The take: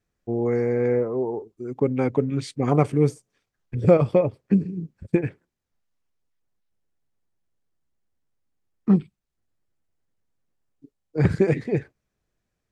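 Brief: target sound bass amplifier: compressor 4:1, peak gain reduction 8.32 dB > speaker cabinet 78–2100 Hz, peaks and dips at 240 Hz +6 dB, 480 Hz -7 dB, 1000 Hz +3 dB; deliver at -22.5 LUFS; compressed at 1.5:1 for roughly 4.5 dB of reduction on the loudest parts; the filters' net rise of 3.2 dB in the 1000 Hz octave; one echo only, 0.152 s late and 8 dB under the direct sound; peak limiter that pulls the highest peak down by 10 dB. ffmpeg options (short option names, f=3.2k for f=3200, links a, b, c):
-af "equalizer=f=1k:t=o:g=3.5,acompressor=threshold=-24dB:ratio=1.5,alimiter=limit=-17.5dB:level=0:latency=1,aecho=1:1:152:0.398,acompressor=threshold=-30dB:ratio=4,highpass=f=78:w=0.5412,highpass=f=78:w=1.3066,equalizer=f=240:t=q:w=4:g=6,equalizer=f=480:t=q:w=4:g=-7,equalizer=f=1k:t=q:w=4:g=3,lowpass=f=2.1k:w=0.5412,lowpass=f=2.1k:w=1.3066,volume=12dB"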